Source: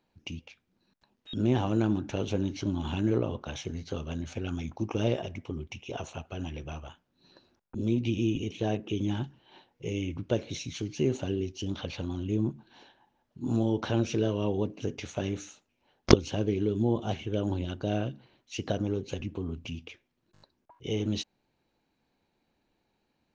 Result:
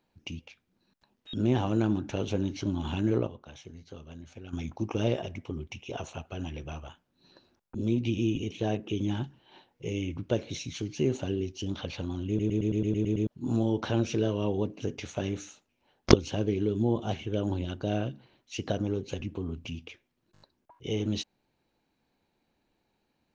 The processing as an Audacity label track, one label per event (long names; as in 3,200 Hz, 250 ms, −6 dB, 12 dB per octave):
3.270000	4.530000	clip gain −10.5 dB
12.280000	12.280000	stutter in place 0.11 s, 9 plays